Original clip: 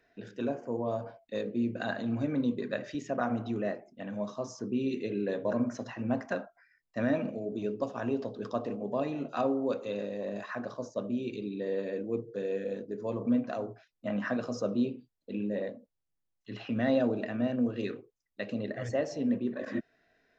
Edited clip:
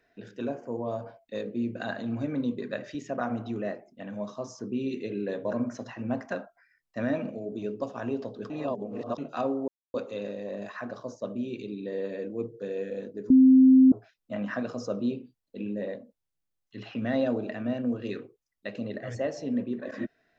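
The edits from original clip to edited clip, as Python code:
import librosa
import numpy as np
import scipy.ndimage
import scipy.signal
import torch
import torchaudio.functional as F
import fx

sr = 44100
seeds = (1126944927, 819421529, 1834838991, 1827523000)

y = fx.edit(x, sr, fx.reverse_span(start_s=8.5, length_s=0.68),
    fx.insert_silence(at_s=9.68, length_s=0.26),
    fx.bleep(start_s=13.04, length_s=0.62, hz=261.0, db=-12.5), tone=tone)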